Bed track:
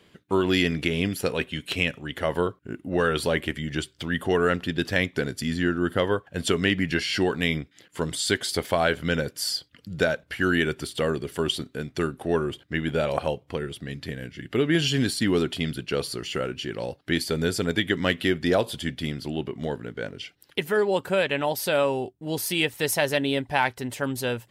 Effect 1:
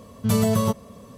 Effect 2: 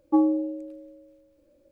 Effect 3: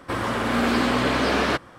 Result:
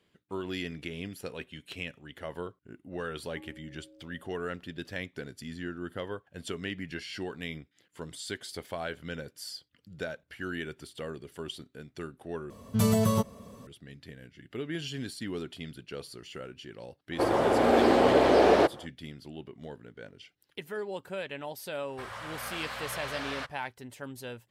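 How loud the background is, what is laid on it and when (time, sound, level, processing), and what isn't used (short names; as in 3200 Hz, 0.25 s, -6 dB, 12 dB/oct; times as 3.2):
bed track -13.5 dB
3.24 add 2 -12 dB + compressor 3:1, threshold -42 dBFS
12.5 replace with 1 -4 dB
17.1 add 3 -7 dB, fades 0.05 s + band shelf 520 Hz +12 dB
21.89 add 3 -17.5 dB + EQ curve 150 Hz 0 dB, 290 Hz -23 dB, 520 Hz 0 dB, 1700 Hz +5 dB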